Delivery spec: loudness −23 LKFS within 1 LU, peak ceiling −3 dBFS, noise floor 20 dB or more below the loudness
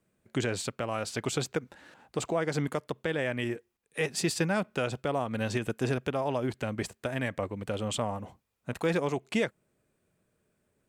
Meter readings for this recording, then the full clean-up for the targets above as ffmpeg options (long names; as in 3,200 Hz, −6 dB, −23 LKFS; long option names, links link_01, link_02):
integrated loudness −32.0 LKFS; sample peak −17.0 dBFS; target loudness −23.0 LKFS
→ -af "volume=9dB"